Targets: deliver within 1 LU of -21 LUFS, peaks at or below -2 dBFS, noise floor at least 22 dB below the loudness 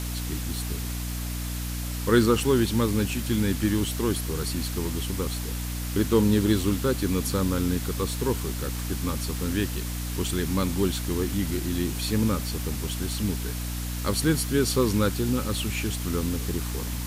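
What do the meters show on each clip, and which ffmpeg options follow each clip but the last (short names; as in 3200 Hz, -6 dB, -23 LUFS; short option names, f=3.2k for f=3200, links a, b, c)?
hum 60 Hz; harmonics up to 300 Hz; hum level -29 dBFS; noise floor -31 dBFS; noise floor target -49 dBFS; loudness -26.5 LUFS; peak -8.5 dBFS; loudness target -21.0 LUFS
-> -af "bandreject=f=60:t=h:w=6,bandreject=f=120:t=h:w=6,bandreject=f=180:t=h:w=6,bandreject=f=240:t=h:w=6,bandreject=f=300:t=h:w=6"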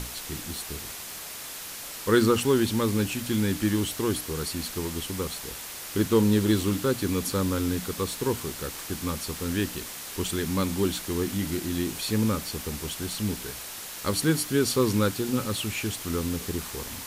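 hum none; noise floor -39 dBFS; noise floor target -50 dBFS
-> -af "afftdn=nr=11:nf=-39"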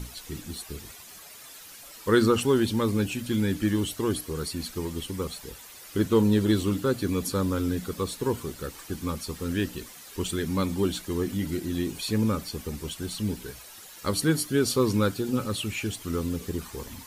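noise floor -46 dBFS; noise floor target -50 dBFS
-> -af "afftdn=nr=6:nf=-46"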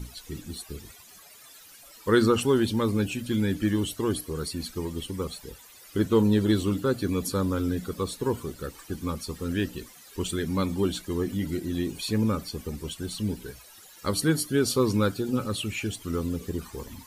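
noise floor -51 dBFS; loudness -28.0 LUFS; peak -9.5 dBFS; loudness target -21.0 LUFS
-> -af "volume=7dB"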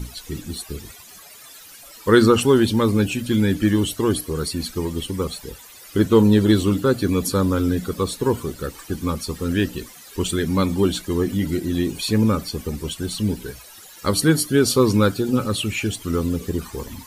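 loudness -21.0 LUFS; peak -2.5 dBFS; noise floor -44 dBFS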